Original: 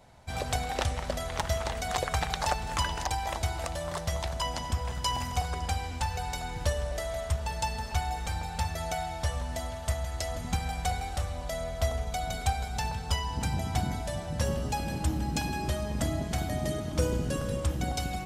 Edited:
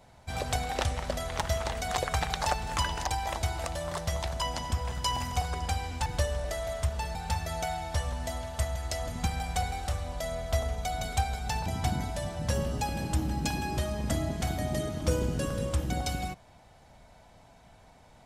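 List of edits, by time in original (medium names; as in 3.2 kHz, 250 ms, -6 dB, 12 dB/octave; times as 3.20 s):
6.06–6.53 s: delete
7.62–8.44 s: delete
12.95–13.57 s: delete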